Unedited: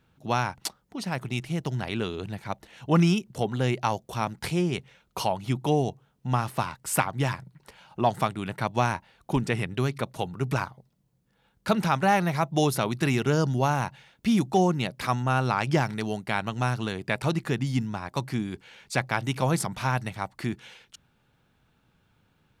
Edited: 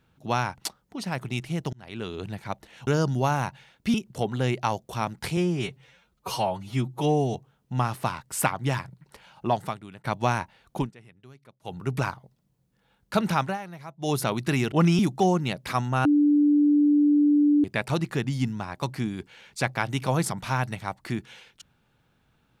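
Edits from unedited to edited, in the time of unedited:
1.73–2.22 fade in
2.87–3.14 swap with 13.26–14.33
4.57–5.89 stretch 1.5×
8.01–8.59 fade out quadratic, to -13.5 dB
9.32–10.3 dip -23.5 dB, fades 0.13 s
11.95–12.7 dip -15.5 dB, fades 0.17 s
15.39–16.98 bleep 293 Hz -16 dBFS

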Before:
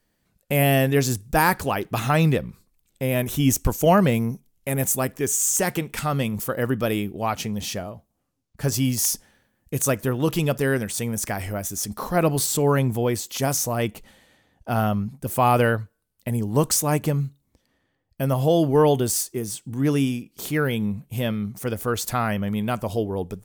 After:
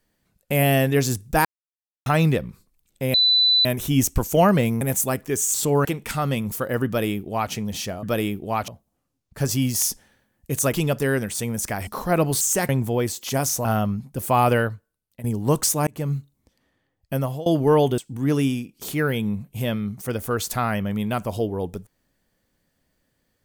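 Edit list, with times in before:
1.45–2.06 mute
3.14 add tone 3990 Hz -14 dBFS 0.51 s
4.3–4.72 cut
5.45–5.73 swap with 12.46–12.77
6.75–7.4 copy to 7.91
9.96–10.32 cut
11.46–11.92 cut
13.73–14.73 cut
15.59–16.32 fade out linear, to -13 dB
16.95–17.21 fade in
18.23–18.54 fade out, to -22.5 dB
19.06–19.55 cut

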